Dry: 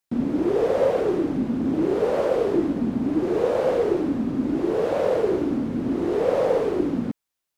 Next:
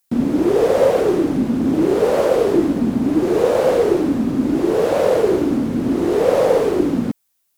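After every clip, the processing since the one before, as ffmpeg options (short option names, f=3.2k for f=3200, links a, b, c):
-af "highshelf=f=6.4k:g=12,volume=6dB"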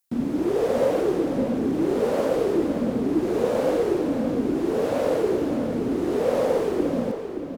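-filter_complex "[0:a]asplit=2[a][b];[b]adelay=572,lowpass=f=4.8k:p=1,volume=-7.5dB,asplit=2[c][d];[d]adelay=572,lowpass=f=4.8k:p=1,volume=0.33,asplit=2[e][f];[f]adelay=572,lowpass=f=4.8k:p=1,volume=0.33,asplit=2[g][h];[h]adelay=572,lowpass=f=4.8k:p=1,volume=0.33[i];[a][c][e][g][i]amix=inputs=5:normalize=0,volume=-7.5dB"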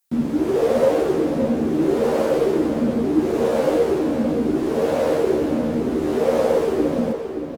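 -filter_complex "[0:a]asplit=2[a][b];[b]adelay=13,volume=-2dB[c];[a][c]amix=inputs=2:normalize=0,volume=1.5dB"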